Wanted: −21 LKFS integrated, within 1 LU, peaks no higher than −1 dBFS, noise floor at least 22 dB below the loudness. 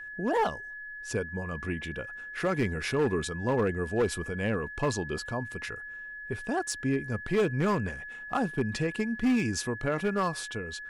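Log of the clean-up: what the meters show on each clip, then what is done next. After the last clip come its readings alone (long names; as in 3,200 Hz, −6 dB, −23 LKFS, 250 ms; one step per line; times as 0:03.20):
share of clipped samples 1.0%; peaks flattened at −20.5 dBFS; interfering tone 1,700 Hz; level of the tone −39 dBFS; integrated loudness −30.5 LKFS; sample peak −20.5 dBFS; target loudness −21.0 LKFS
→ clipped peaks rebuilt −20.5 dBFS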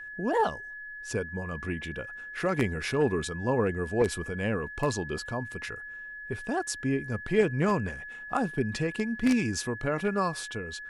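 share of clipped samples 0.0%; interfering tone 1,700 Hz; level of the tone −39 dBFS
→ notch filter 1,700 Hz, Q 30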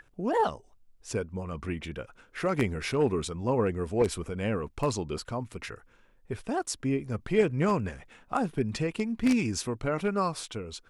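interfering tone none found; integrated loudness −30.0 LKFS; sample peak −11.5 dBFS; target loudness −21.0 LKFS
→ level +9 dB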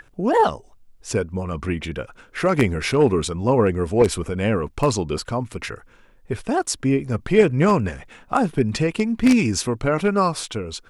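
integrated loudness −21.0 LKFS; sample peak −2.5 dBFS; background noise floor −53 dBFS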